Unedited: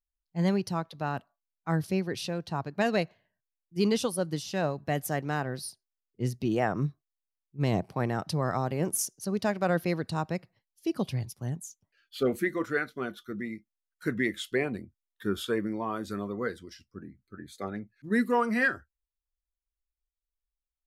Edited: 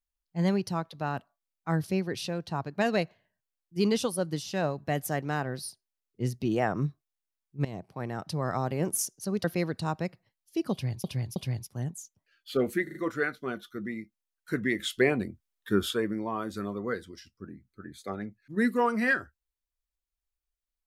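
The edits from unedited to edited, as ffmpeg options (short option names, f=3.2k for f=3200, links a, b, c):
-filter_complex "[0:a]asplit=10[a][b][c][d][e][f][g][h][i][j];[a]atrim=end=7.65,asetpts=PTS-STARTPTS,afade=t=out:st=7.646:d=0.004:c=hsin:silence=0.177828[k];[b]atrim=start=7.65:end=9.442,asetpts=PTS-STARTPTS,afade=t=in:d=1.01:silence=0.177828[l];[c]atrim=start=9.738:end=11.342[m];[d]atrim=start=11.018:end=11.342[n];[e]atrim=start=11.018:end=12.532[o];[f]atrim=start=12.488:end=12.532[p];[g]atrim=start=12.488:end=12.532[q];[h]atrim=start=12.488:end=14.332[r];[i]atrim=start=14.328:end=15.482,asetpts=PTS-STARTPTS,volume=4.5dB[s];[j]atrim=start=15.478[t];[k][l]concat=n=2:v=0:a=1[u];[u][m]acrossfade=d=0.004:c1=hsin:c2=hsin[v];[v][n]acrossfade=d=0.004:c1=hsin:c2=hsin[w];[w][o]acrossfade=d=0.004:c1=hsin:c2=hsin[x];[x][p]acrossfade=d=0.004:c1=hsin:c2=hsin[y];[y][q]acrossfade=d=0.004:c1=hsin:c2=hsin[z];[z][r]acrossfade=d=0.004:c1=hsin:c2=hsin[aa];[aa][s]acrossfade=d=0.004:c1=hsin:c2=hsin[ab];[ab][t]acrossfade=d=0.004:c1=hsin:c2=hsin"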